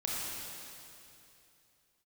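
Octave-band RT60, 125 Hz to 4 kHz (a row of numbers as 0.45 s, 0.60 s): 3.1 s, 2.9 s, 2.8 s, 2.7 s, 2.7 s, 2.7 s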